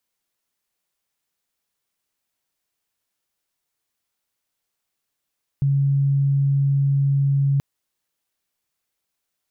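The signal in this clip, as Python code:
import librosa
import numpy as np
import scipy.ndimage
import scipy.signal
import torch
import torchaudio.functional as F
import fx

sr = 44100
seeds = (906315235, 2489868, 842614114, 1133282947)

y = 10.0 ** (-15.5 / 20.0) * np.sin(2.0 * np.pi * (139.0 * (np.arange(round(1.98 * sr)) / sr)))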